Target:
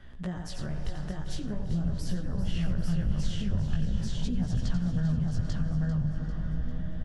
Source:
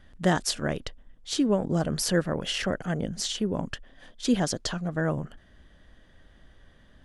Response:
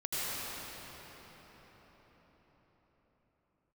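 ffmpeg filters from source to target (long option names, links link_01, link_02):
-filter_complex "[0:a]aecho=1:1:88|626|842:0.398|0.2|0.596,asplit=2[link_01][link_02];[1:a]atrim=start_sample=2205,asetrate=52920,aresample=44100,adelay=64[link_03];[link_02][link_03]afir=irnorm=-1:irlink=0,volume=-17.5dB[link_04];[link_01][link_04]amix=inputs=2:normalize=0,acrossover=split=130[link_05][link_06];[link_06]acompressor=threshold=-47dB:ratio=2.5[link_07];[link_05][link_07]amix=inputs=2:normalize=0,highshelf=frequency=5900:gain=-9.5,acompressor=threshold=-38dB:ratio=2.5,flanger=delay=16:depth=4.3:speed=0.43,asplit=2[link_08][link_09];[link_09]aecho=0:1:396|792|1188|1584|1980:0.251|0.131|0.0679|0.0353|0.0184[link_10];[link_08][link_10]amix=inputs=2:normalize=0,asubboost=boost=7.5:cutoff=140,volume=7dB"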